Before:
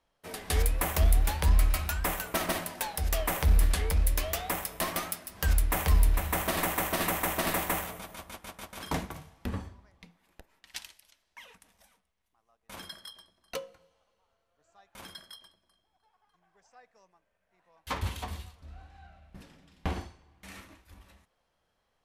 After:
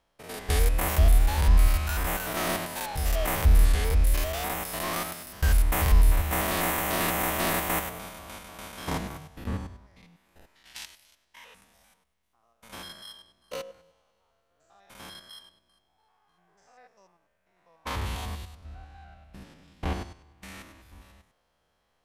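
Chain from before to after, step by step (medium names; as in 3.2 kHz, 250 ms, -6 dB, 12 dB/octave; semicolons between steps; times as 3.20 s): spectrogram pixelated in time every 100 ms; trim +5 dB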